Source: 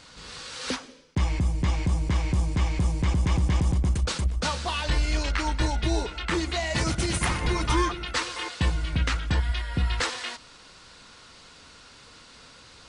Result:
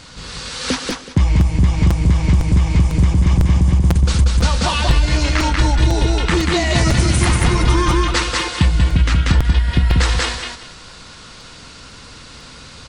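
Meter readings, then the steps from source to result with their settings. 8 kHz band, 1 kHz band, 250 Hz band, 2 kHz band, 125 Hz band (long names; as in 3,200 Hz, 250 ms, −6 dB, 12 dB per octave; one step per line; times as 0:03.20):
+9.5 dB, +8.5 dB, +11.0 dB, +8.5 dB, +12.0 dB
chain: bass and treble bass +6 dB, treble +1 dB
repeating echo 188 ms, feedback 22%, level −3 dB
downward compressor, threshold −18 dBFS, peak gain reduction 8 dB
regular buffer underruns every 0.50 s, samples 256, repeat, from 0:00.90
level +8.5 dB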